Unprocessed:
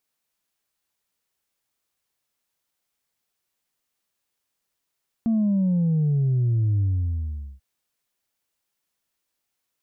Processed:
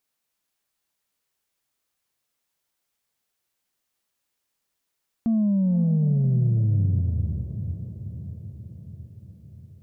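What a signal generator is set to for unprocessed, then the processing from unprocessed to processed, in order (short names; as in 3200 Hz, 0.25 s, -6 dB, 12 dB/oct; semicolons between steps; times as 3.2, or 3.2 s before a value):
sub drop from 230 Hz, over 2.34 s, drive 1 dB, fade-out 0.80 s, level -18.5 dB
diffused feedback echo 0.5 s, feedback 63%, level -10 dB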